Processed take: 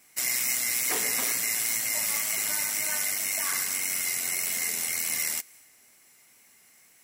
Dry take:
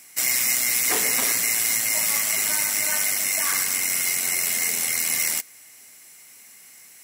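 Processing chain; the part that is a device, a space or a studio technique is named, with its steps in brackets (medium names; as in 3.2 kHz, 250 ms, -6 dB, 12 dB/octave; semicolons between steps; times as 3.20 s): plain cassette with noise reduction switched in (tape noise reduction on one side only decoder only; wow and flutter 23 cents; white noise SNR 41 dB); trim -5.5 dB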